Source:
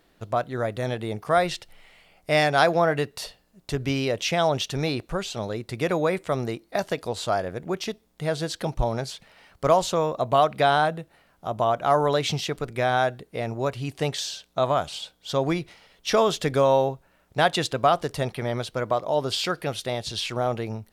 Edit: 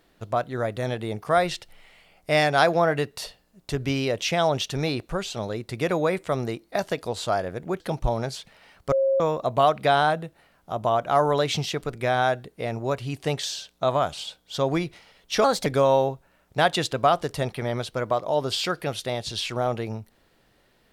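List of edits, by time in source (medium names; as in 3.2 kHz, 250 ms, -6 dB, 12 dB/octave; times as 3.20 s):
7.80–8.55 s: delete
9.67–9.95 s: bleep 540 Hz -18 dBFS
16.19–16.46 s: speed 123%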